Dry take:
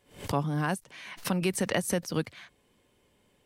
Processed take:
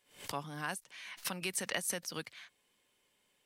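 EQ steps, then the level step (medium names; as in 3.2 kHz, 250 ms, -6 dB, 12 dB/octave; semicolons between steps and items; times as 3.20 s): tilt shelf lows -7 dB, about 880 Hz; peaking EQ 68 Hz -8.5 dB 1.2 oct; -8.5 dB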